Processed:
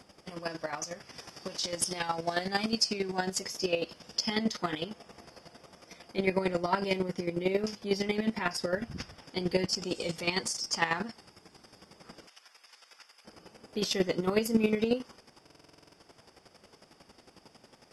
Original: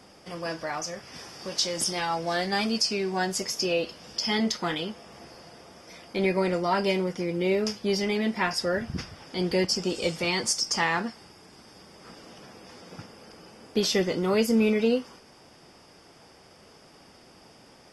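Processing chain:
0:12.27–0:13.25: high-pass filter 1,400 Hz 12 dB per octave
square-wave tremolo 11 Hz, depth 65%, duty 25%
buffer that repeats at 0:15.42, samples 2,048, times 10

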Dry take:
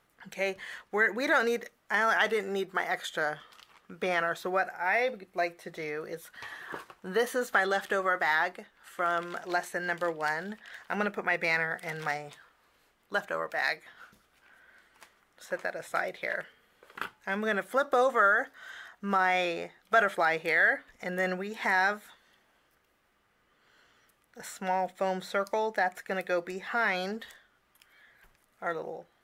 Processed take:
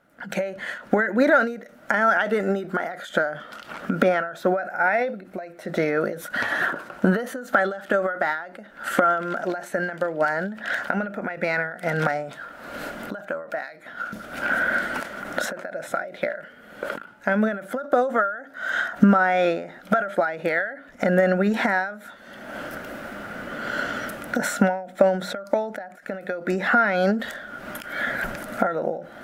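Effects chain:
camcorder AGC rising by 42 dB per second
hollow resonant body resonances 240/580/1,400 Hz, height 16 dB, ringing for 20 ms
every ending faded ahead of time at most 100 dB per second
level −3.5 dB

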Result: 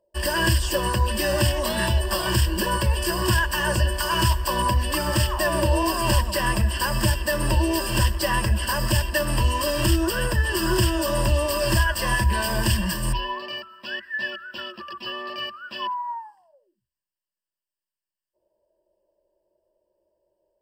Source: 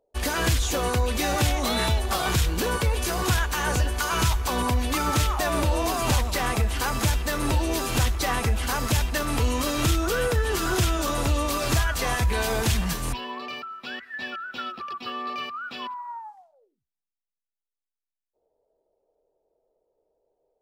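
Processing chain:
EQ curve with evenly spaced ripples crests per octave 1.3, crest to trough 17 dB
level −1.5 dB

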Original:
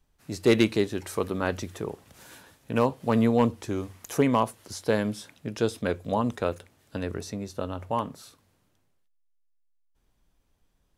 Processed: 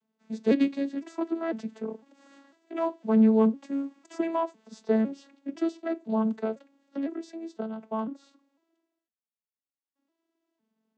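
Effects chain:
vocoder with an arpeggio as carrier major triad, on A3, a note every 504 ms

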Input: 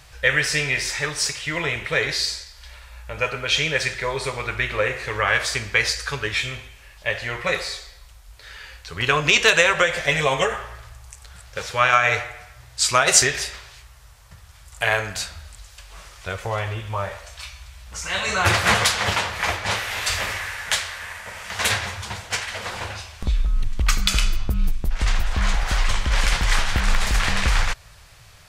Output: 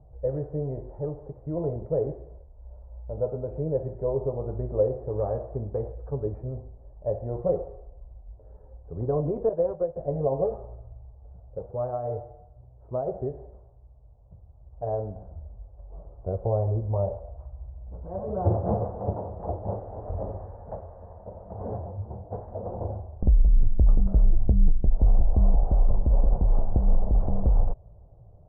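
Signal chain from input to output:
0:09.49–0:09.96: downward expander −13 dBFS
speech leveller within 4 dB 2 s
Butterworth low-pass 700 Hz 36 dB per octave
0:21.59–0:22.31: micro pitch shift up and down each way 43 cents

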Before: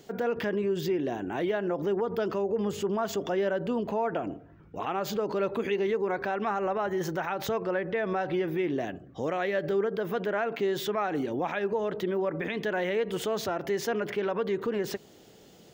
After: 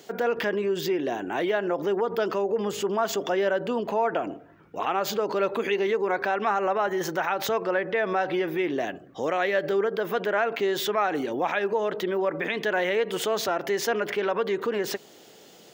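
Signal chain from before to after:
high-pass filter 480 Hz 6 dB per octave
level +6.5 dB

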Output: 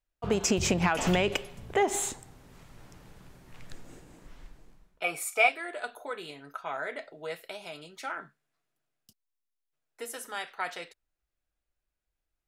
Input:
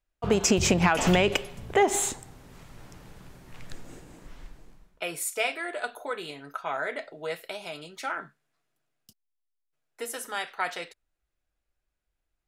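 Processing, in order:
0:05.04–0:05.49: hollow resonant body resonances 780/1,200/2,300 Hz, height 16 dB, ringing for 25 ms
level −4 dB

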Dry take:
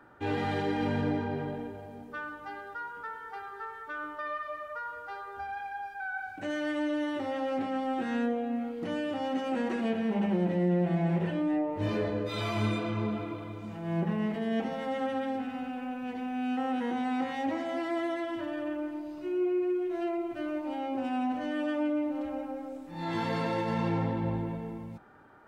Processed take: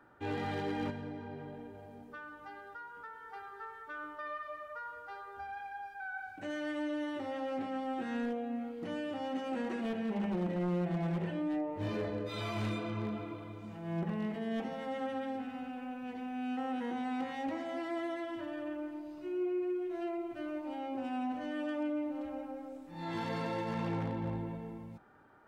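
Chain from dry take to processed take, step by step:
0:00.90–0:03.29: downward compressor 2 to 1, threshold −40 dBFS, peak gain reduction 8 dB
wave folding −22.5 dBFS
level −5.5 dB

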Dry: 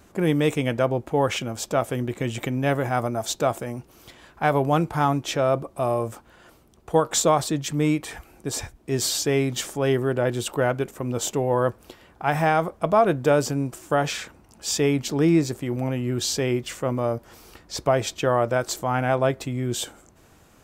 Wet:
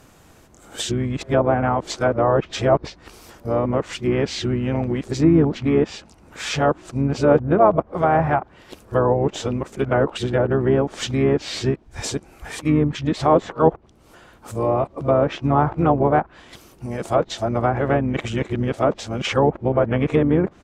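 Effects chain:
played backwards from end to start
pitch-shifted copies added −12 semitones −13 dB, −3 semitones −11 dB
treble cut that deepens with the level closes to 1,300 Hz, closed at −17 dBFS
level +3.5 dB

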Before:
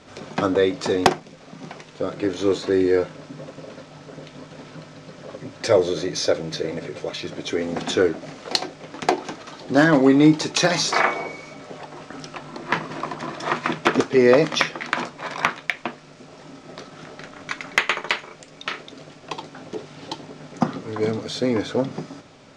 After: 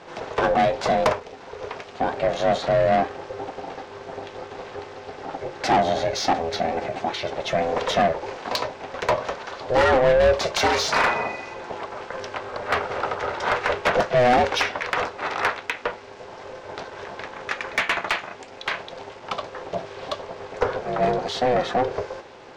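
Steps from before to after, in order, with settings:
spectral tilt −2 dB per octave
ring modulation 250 Hz
mid-hump overdrive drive 24 dB, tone 4,400 Hz, clips at −1 dBFS
level −8 dB

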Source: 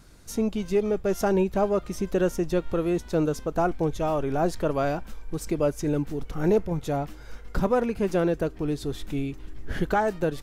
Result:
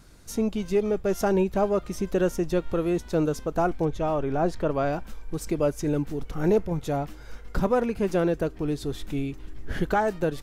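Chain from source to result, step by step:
0:03.85–0:04.93: low-pass filter 3,500 Hz 6 dB per octave

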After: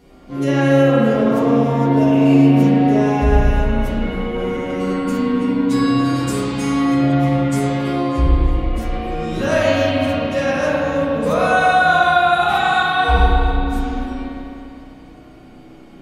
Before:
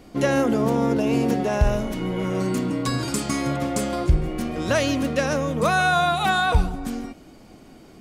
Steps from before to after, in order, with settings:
phase-vocoder stretch with locked phases 2×
spring reverb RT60 2.7 s, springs 31/36 ms, chirp 20 ms, DRR −8.5 dB
level −3.5 dB

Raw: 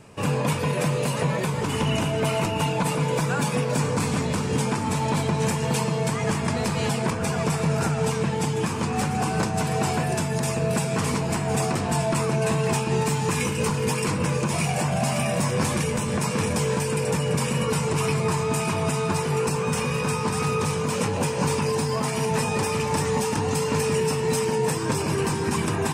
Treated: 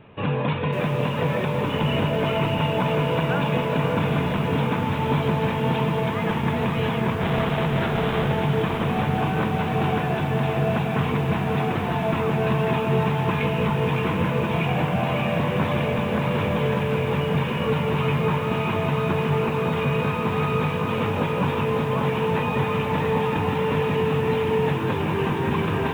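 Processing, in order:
0:07.21–0:08.33: comparator with hysteresis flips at −31.5 dBFS
on a send: feedback delay with all-pass diffusion 778 ms, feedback 64%, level −7 dB
on the sum: downsampling to 8,000 Hz
feedback echo at a low word length 552 ms, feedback 35%, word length 7 bits, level −8 dB

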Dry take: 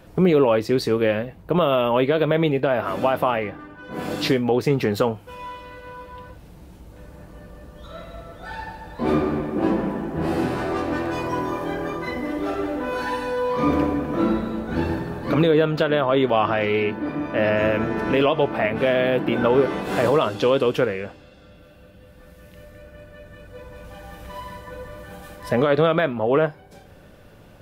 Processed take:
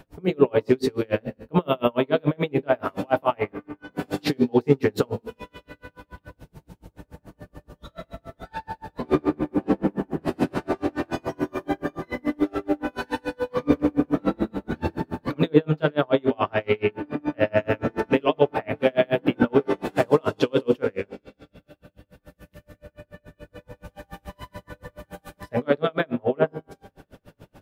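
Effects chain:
brickwall limiter −10.5 dBFS, peak gain reduction 4.5 dB
tuned comb filter 88 Hz, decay 1.5 s, harmonics all, mix 50%
on a send at −3 dB: linear-phase brick-wall low-pass 1,000 Hz + convolution reverb RT60 0.65 s, pre-delay 3 ms
on the sum: tremolo with a sine in dB 7 Hz, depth 37 dB
level +8.5 dB

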